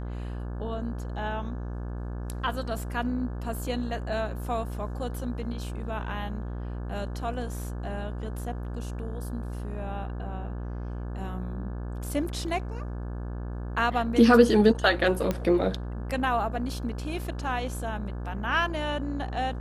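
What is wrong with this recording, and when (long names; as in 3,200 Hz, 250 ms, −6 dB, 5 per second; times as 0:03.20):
mains buzz 60 Hz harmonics 29 −34 dBFS
0:15.31: click −14 dBFS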